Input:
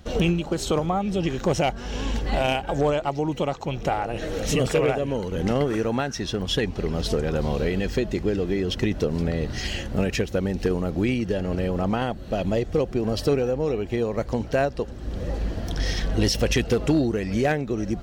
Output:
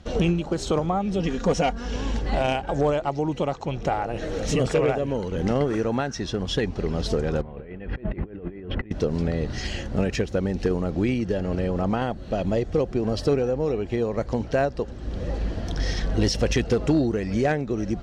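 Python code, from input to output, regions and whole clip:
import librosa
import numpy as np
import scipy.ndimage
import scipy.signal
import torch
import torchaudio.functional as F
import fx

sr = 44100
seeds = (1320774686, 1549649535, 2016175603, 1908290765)

y = fx.chain(x, sr, fx.peak_eq(hz=700.0, db=-2.5, octaves=0.41),
    fx.comb(ms=4.2, depth=0.68), at=(1.19, 1.96))
y = fx.chain(y, sr, fx.lowpass(hz=2300.0, slope=24),
    fx.over_compress(threshold_db=-31.0, ratio=-0.5), at=(7.41, 8.91))
y = scipy.signal.sosfilt(scipy.signal.butter(2, 7100.0, 'lowpass', fs=sr, output='sos'), y)
y = fx.dynamic_eq(y, sr, hz=2900.0, q=1.3, threshold_db=-43.0, ratio=4.0, max_db=-4)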